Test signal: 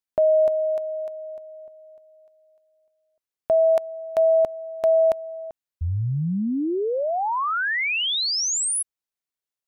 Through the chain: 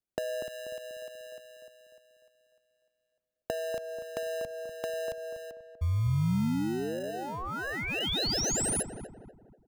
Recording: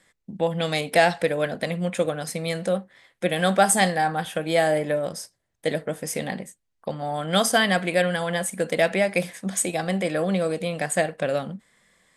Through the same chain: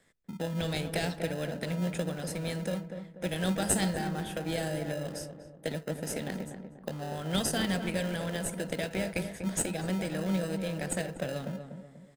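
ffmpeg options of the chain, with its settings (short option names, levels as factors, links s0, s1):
-filter_complex "[0:a]acrossover=split=230|3000[s0][s1][s2];[s1]acompressor=threshold=0.02:ratio=2.5:attack=26:release=203:knee=2.83:detection=peak[s3];[s0][s3][s2]amix=inputs=3:normalize=0,asplit=2[s4][s5];[s5]acrusher=samples=39:mix=1:aa=0.000001,volume=0.668[s6];[s4][s6]amix=inputs=2:normalize=0,asplit=2[s7][s8];[s8]adelay=243,lowpass=f=1200:p=1,volume=0.447,asplit=2[s9][s10];[s10]adelay=243,lowpass=f=1200:p=1,volume=0.43,asplit=2[s11][s12];[s12]adelay=243,lowpass=f=1200:p=1,volume=0.43,asplit=2[s13][s14];[s14]adelay=243,lowpass=f=1200:p=1,volume=0.43,asplit=2[s15][s16];[s16]adelay=243,lowpass=f=1200:p=1,volume=0.43[s17];[s7][s9][s11][s13][s15][s17]amix=inputs=6:normalize=0,volume=0.422"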